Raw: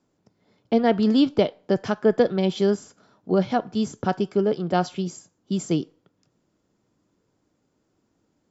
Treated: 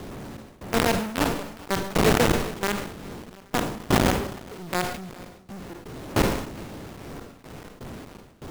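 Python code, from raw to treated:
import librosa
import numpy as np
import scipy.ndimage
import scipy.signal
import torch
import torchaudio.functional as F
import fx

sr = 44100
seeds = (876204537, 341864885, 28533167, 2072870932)

p1 = fx.dmg_wind(x, sr, seeds[0], corner_hz=310.0, level_db=-22.0)
p2 = scipy.signal.sosfilt(scipy.signal.butter(4, 2200.0, 'lowpass', fs=sr, output='sos'), p1)
p3 = fx.low_shelf(p2, sr, hz=110.0, db=-4.0)
p4 = fx.quant_companded(p3, sr, bits=2)
p5 = fx.step_gate(p4, sr, bpm=123, pattern='xxx..xxxxxx..xx.', floor_db=-24.0, edge_ms=4.5)
p6 = p5 + fx.echo_feedback(p5, sr, ms=414, feedback_pct=31, wet_db=-22.0, dry=0)
p7 = fx.rev_schroeder(p6, sr, rt60_s=0.72, comb_ms=32, drr_db=15.0)
p8 = fx.sustainer(p7, sr, db_per_s=67.0)
y = p8 * 10.0 ** (-12.0 / 20.0)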